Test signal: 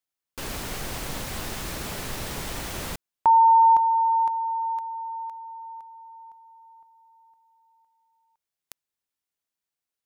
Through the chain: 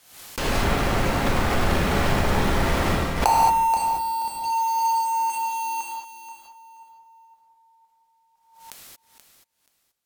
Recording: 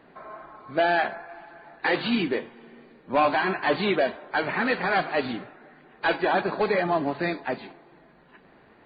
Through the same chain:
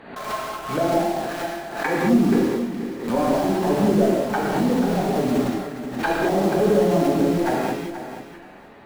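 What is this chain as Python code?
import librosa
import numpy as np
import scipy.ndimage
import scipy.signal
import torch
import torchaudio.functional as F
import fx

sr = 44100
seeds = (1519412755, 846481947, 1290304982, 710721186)

p1 = fx.env_lowpass_down(x, sr, base_hz=360.0, full_db=-23.5)
p2 = fx.quant_companded(p1, sr, bits=2)
p3 = p1 + F.gain(torch.from_numpy(p2), -9.0).numpy()
p4 = fx.echo_feedback(p3, sr, ms=480, feedback_pct=21, wet_db=-11.0)
p5 = fx.rev_gated(p4, sr, seeds[0], gate_ms=250, shape='flat', drr_db=-4.5)
p6 = fx.pre_swell(p5, sr, db_per_s=83.0)
y = F.gain(torch.from_numpy(p6), 2.0).numpy()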